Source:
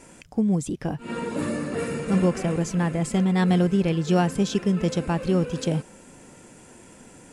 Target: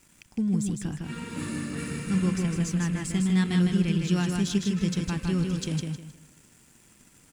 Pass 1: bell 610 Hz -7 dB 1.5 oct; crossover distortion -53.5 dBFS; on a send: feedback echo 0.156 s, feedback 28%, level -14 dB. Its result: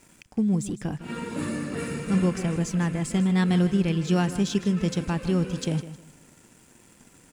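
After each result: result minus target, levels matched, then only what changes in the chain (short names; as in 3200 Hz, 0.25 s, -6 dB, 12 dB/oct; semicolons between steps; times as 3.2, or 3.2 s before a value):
echo-to-direct -10 dB; 500 Hz band +4.5 dB
change: feedback echo 0.156 s, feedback 28%, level -4 dB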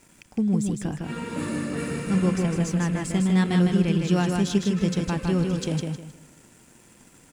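500 Hz band +4.5 dB
change: bell 610 Hz -19 dB 1.5 oct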